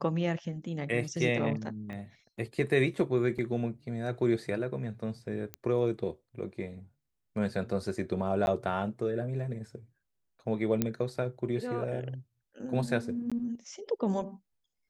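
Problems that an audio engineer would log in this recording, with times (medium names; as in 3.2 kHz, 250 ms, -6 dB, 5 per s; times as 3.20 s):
1.93 s: pop -30 dBFS
3.38–3.39 s: dropout 5.5 ms
5.54 s: pop -21 dBFS
8.46–8.47 s: dropout 11 ms
10.82 s: pop -13 dBFS
13.30–13.32 s: dropout 16 ms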